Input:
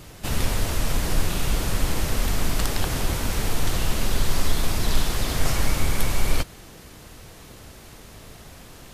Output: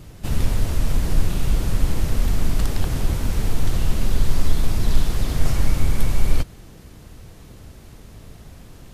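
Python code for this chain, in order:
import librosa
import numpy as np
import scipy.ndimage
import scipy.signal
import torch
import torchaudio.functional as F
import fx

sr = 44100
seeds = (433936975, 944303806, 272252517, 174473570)

y = fx.low_shelf(x, sr, hz=340.0, db=10.5)
y = y * librosa.db_to_amplitude(-5.5)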